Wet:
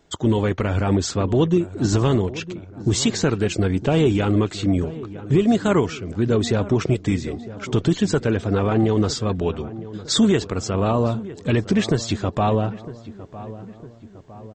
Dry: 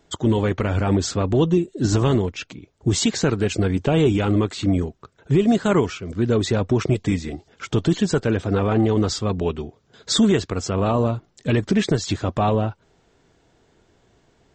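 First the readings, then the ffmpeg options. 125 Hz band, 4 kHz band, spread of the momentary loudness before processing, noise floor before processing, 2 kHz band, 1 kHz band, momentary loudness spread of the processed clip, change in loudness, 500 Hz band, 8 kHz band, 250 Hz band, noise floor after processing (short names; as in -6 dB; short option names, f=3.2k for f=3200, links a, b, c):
0.0 dB, 0.0 dB, 8 LU, -62 dBFS, 0.0 dB, 0.0 dB, 14 LU, 0.0 dB, 0.0 dB, 0.0 dB, 0.0 dB, -42 dBFS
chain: -filter_complex "[0:a]asplit=2[a][b];[b]adelay=957,lowpass=f=1.5k:p=1,volume=-15.5dB,asplit=2[c][d];[d]adelay=957,lowpass=f=1.5k:p=1,volume=0.55,asplit=2[e][f];[f]adelay=957,lowpass=f=1.5k:p=1,volume=0.55,asplit=2[g][h];[h]adelay=957,lowpass=f=1.5k:p=1,volume=0.55,asplit=2[i][j];[j]adelay=957,lowpass=f=1.5k:p=1,volume=0.55[k];[a][c][e][g][i][k]amix=inputs=6:normalize=0"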